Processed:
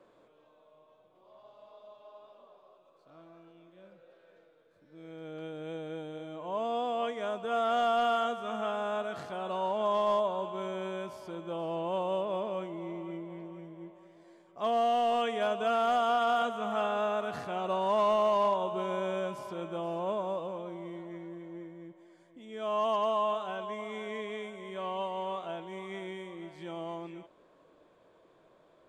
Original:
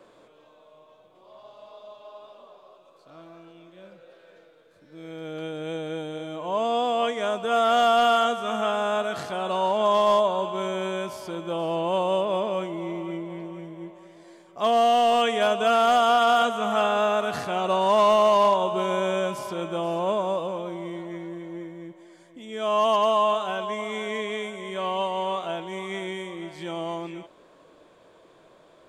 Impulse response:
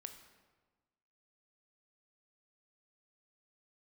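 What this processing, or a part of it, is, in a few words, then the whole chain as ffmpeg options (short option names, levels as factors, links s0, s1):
behind a face mask: -af "highshelf=f=3000:g=-7.5,volume=0.422"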